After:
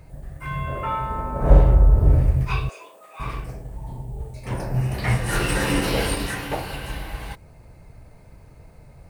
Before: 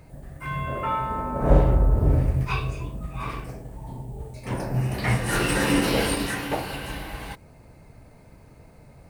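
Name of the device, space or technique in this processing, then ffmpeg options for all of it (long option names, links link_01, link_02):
low shelf boost with a cut just above: -filter_complex "[0:a]asettb=1/sr,asplit=3[link_01][link_02][link_03];[link_01]atrim=end=2.694[link_04];[link_02]atrim=start=2.69:end=3.2,asetpts=PTS-STARTPTS,afade=type=in:duration=0.004:curve=qsin,afade=type=out:start_time=0.506:duration=0.004:curve=qsin,highpass=frequency=470:width=0.5412,highpass=frequency=470:width=1.3066[link_05];[link_03]atrim=start=3.196[link_06];[link_04][link_05]acrossfade=duration=0.004:curve1=hsin:curve2=qsin[link_07];[link_07][link_06]acrossfade=duration=0.004:curve1=qsin:curve2=hsin,lowshelf=frequency=89:gain=7.5,equalizer=frequency=250:width_type=o:width=0.69:gain=-4.5"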